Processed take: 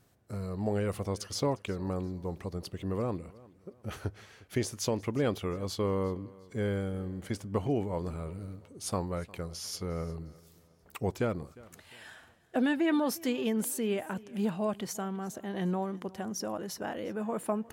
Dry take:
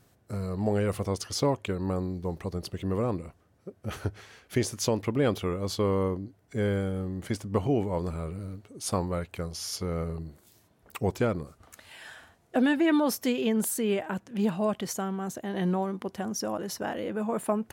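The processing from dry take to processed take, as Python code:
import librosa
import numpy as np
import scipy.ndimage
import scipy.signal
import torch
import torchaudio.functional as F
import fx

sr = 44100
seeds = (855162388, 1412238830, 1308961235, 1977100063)

y = fx.echo_feedback(x, sr, ms=355, feedback_pct=36, wet_db=-22.0)
y = F.gain(torch.from_numpy(y), -4.0).numpy()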